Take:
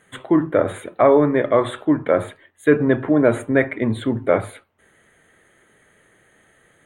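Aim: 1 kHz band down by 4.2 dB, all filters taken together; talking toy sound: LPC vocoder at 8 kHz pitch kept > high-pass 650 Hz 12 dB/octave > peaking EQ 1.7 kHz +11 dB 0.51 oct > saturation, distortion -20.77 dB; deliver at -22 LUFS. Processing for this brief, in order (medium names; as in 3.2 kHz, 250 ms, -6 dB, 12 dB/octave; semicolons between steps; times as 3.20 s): peaking EQ 1 kHz -7 dB; LPC vocoder at 8 kHz pitch kept; high-pass 650 Hz 12 dB/octave; peaking EQ 1.7 kHz +11 dB 0.51 oct; saturation -6.5 dBFS; trim +2.5 dB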